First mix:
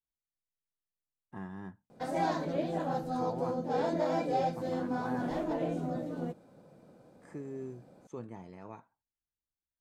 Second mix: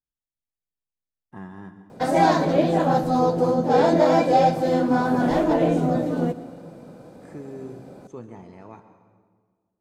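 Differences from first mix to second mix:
background +11.5 dB; reverb: on, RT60 1.6 s

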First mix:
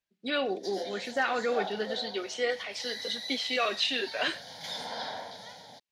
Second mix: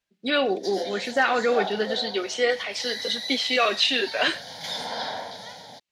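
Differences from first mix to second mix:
speech +7.0 dB; background +6.0 dB

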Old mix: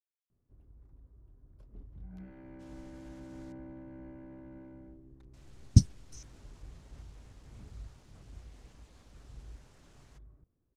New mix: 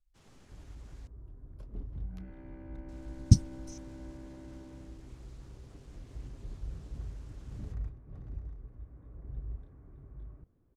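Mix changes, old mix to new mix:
speech: entry -2.45 s; first sound +9.0 dB

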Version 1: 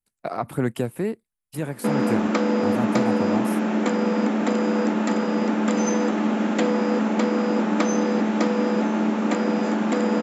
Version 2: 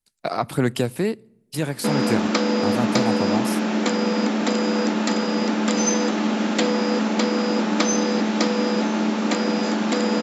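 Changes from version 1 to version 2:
speech: send on; master: add bell 4700 Hz +12 dB 1.4 oct

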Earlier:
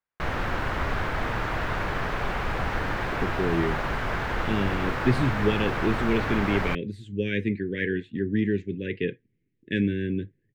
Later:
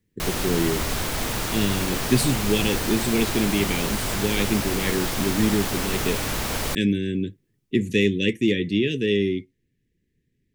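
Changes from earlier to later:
speech: entry -2.95 s; master: remove EQ curve 110 Hz 0 dB, 230 Hz -4 dB, 1600 Hz +4 dB, 9300 Hz -27 dB

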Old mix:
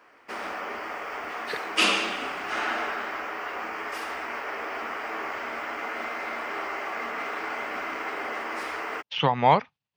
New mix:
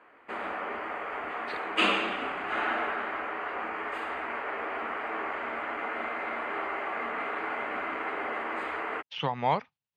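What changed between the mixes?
speech -7.5 dB; first sound: add running mean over 8 samples

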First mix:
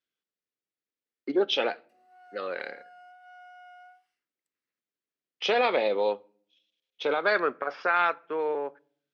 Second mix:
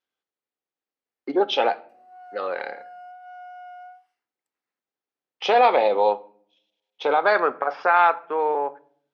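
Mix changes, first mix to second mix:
speech: send +7.5 dB; master: add bell 830 Hz +12 dB 1 oct

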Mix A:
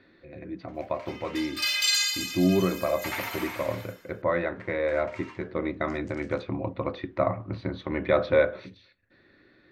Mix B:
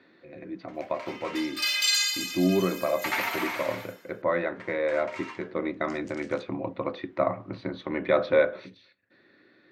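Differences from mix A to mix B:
first sound +5.5 dB; master: add HPF 170 Hz 12 dB/oct

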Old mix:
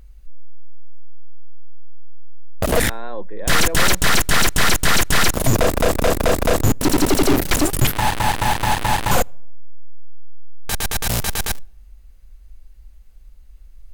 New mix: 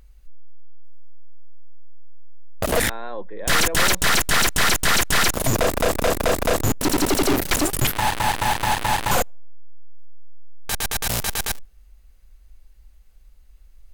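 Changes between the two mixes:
background: send -11.5 dB; master: add low shelf 340 Hz -5 dB

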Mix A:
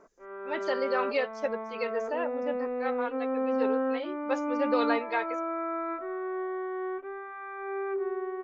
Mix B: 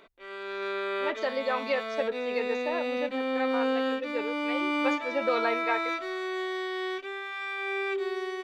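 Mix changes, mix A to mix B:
speech: entry +0.55 s; background: remove LPF 1400 Hz 24 dB/oct

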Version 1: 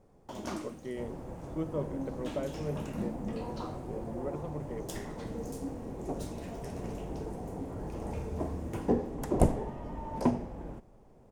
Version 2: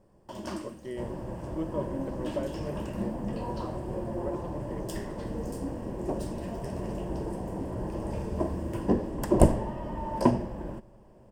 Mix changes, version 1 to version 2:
second sound +5.0 dB; master: add ripple EQ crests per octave 1.3, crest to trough 7 dB

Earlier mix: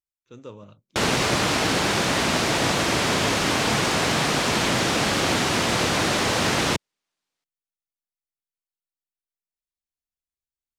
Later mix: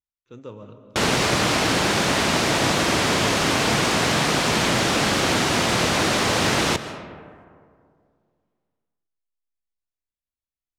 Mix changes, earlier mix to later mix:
speech: add high shelf 4200 Hz -9 dB; reverb: on, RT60 2.2 s

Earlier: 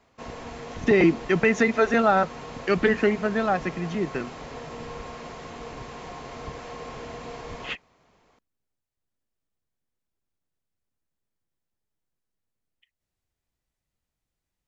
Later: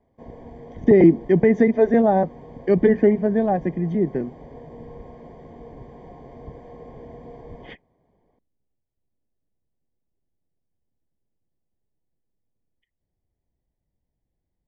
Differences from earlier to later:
speech +7.0 dB; master: add running mean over 33 samples

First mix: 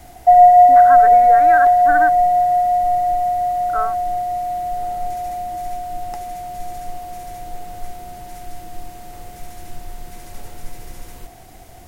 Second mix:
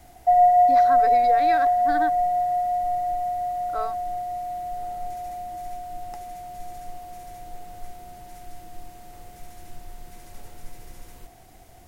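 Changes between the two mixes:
speech: remove synth low-pass 1500 Hz, resonance Q 4.6; background -8.0 dB

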